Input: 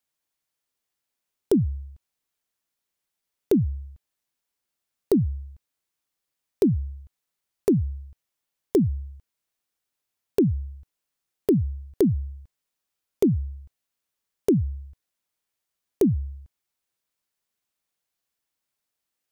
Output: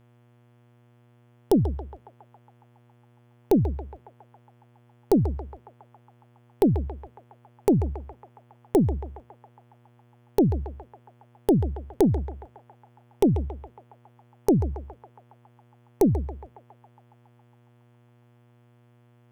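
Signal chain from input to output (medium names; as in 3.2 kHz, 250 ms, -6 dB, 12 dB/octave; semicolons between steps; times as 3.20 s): Chebyshev shaper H 2 -11 dB, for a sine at -9.5 dBFS; band-passed feedback delay 138 ms, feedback 79%, band-pass 1.1 kHz, level -8 dB; mains buzz 120 Hz, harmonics 29, -58 dBFS -7 dB/octave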